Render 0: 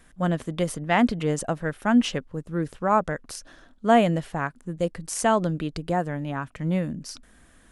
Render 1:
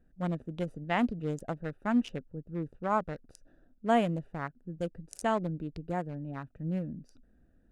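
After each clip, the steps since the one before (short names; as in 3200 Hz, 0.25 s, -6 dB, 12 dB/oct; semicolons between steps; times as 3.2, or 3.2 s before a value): Wiener smoothing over 41 samples; gain -7.5 dB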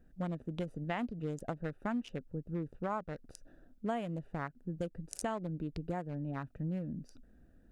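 compressor 5:1, threshold -37 dBFS, peak gain reduction 15.5 dB; gain +3 dB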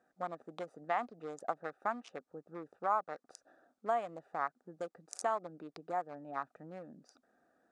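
speaker cabinet 480–9000 Hz, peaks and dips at 760 Hz +9 dB, 1200 Hz +10 dB, 2900 Hz -8 dB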